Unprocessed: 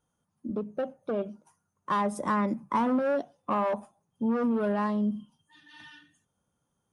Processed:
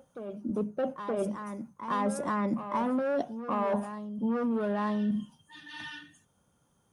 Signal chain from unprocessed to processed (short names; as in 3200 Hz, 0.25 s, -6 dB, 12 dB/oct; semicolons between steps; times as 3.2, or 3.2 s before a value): reverse; compressor 5:1, threshold -36 dBFS, peak gain reduction 13 dB; reverse; reverse echo 0.922 s -9.5 dB; gain +8 dB